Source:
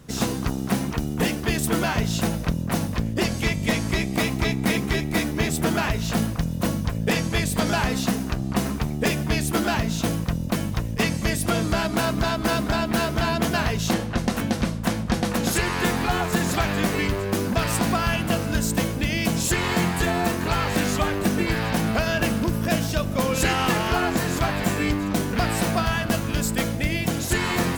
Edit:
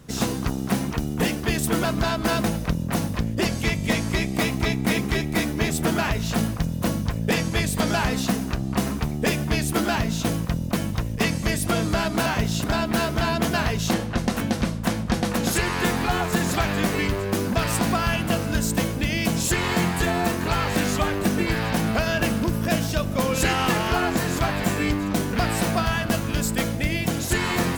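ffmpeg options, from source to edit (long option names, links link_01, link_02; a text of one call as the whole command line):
ffmpeg -i in.wav -filter_complex "[0:a]asplit=5[link_01][link_02][link_03][link_04][link_05];[link_01]atrim=end=1.852[link_06];[link_02]atrim=start=12.048:end=12.642[link_07];[link_03]atrim=start=2.228:end=12.052[link_08];[link_04]atrim=start=1.848:end=2.232[link_09];[link_05]atrim=start=12.638[link_10];[link_06][link_07]acrossfade=duration=0.004:curve1=hsin:curve2=hsin[link_11];[link_11][link_08]acrossfade=duration=0.004:curve1=hsin:curve2=hsin[link_12];[link_12][link_09]acrossfade=duration=0.004:curve1=hsin:curve2=hsin[link_13];[link_13][link_10]acrossfade=duration=0.004:curve1=hsin:curve2=hsin" out.wav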